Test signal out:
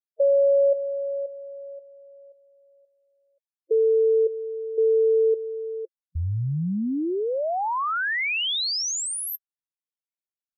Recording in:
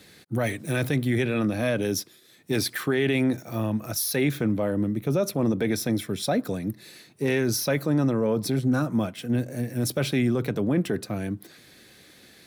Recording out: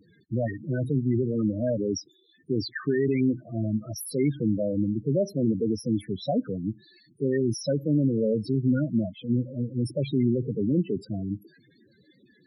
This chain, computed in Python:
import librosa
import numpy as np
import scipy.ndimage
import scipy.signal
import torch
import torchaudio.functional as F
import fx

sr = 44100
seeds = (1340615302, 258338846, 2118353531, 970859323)

y = fx.spec_topn(x, sr, count=8)